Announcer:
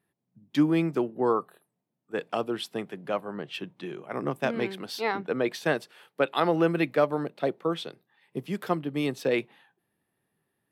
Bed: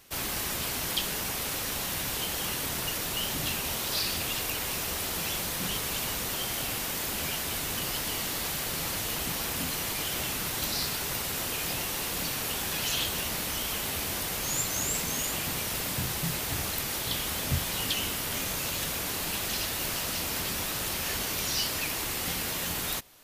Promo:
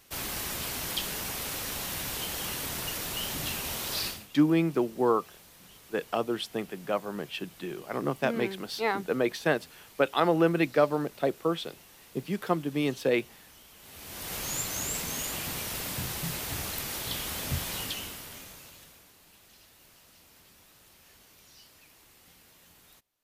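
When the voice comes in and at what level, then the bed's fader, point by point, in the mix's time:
3.80 s, 0.0 dB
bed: 4.07 s -2.5 dB
4.28 s -22 dB
13.75 s -22 dB
14.34 s -3 dB
17.75 s -3 dB
19.15 s -26 dB

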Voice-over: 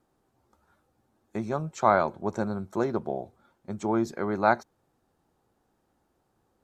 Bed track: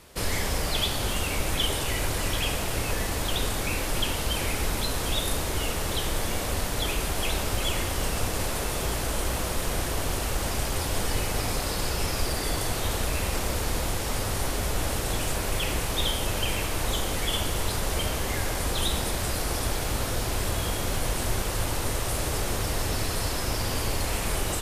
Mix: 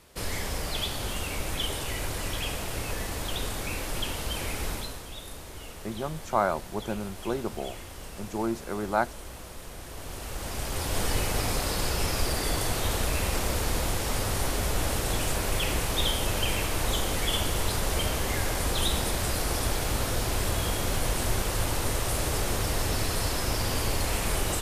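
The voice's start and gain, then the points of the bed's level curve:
4.50 s, -3.5 dB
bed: 4.72 s -4.5 dB
5.07 s -14 dB
9.79 s -14 dB
11.03 s 0 dB

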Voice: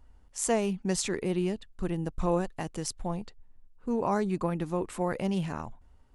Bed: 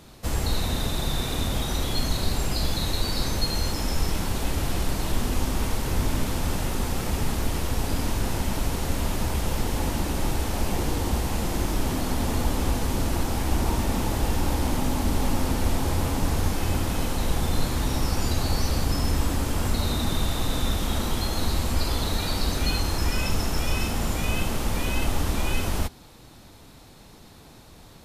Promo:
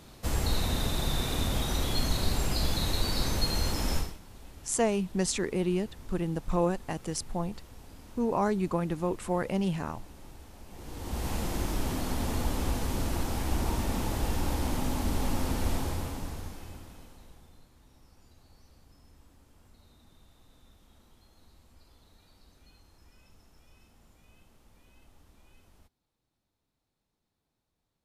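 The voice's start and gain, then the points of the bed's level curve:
4.30 s, +0.5 dB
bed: 3.97 s -3 dB
4.19 s -23.5 dB
10.67 s -23.5 dB
11.27 s -5.5 dB
15.76 s -5.5 dB
17.68 s -34.5 dB

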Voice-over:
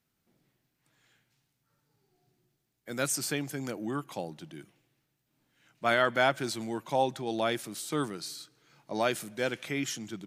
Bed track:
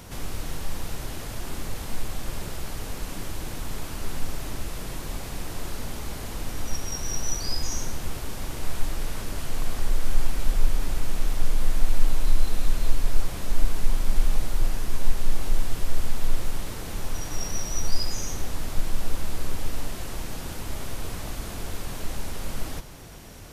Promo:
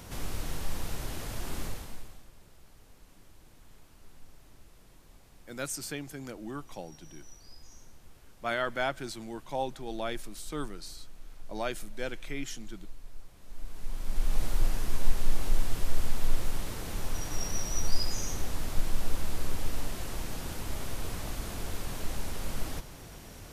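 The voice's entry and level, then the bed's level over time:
2.60 s, -5.5 dB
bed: 1.65 s -3 dB
2.31 s -23.5 dB
13.36 s -23.5 dB
14.44 s -3 dB

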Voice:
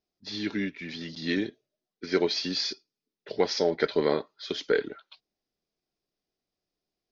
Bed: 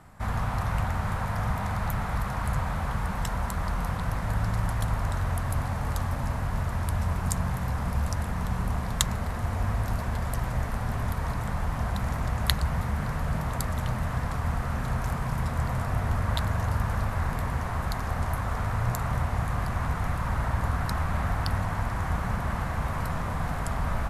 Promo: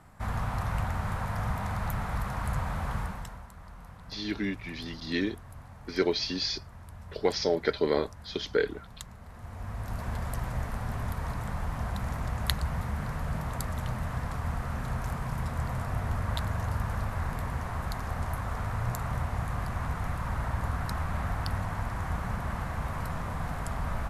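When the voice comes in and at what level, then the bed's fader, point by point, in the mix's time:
3.85 s, -1.5 dB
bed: 3.00 s -3 dB
3.48 s -18.5 dB
9.17 s -18.5 dB
10.09 s -4 dB

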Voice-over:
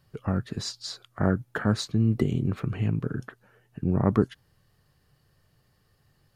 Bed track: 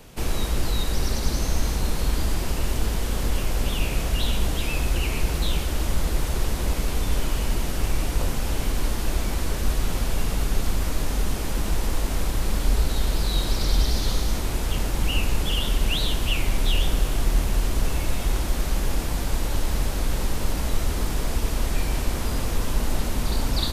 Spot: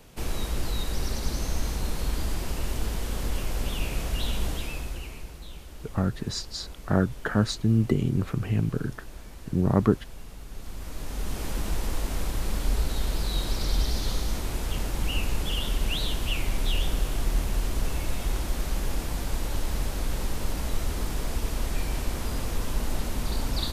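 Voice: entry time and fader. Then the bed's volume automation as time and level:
5.70 s, +1.0 dB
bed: 4.51 s -5 dB
5.37 s -18.5 dB
10.44 s -18.5 dB
11.43 s -4.5 dB

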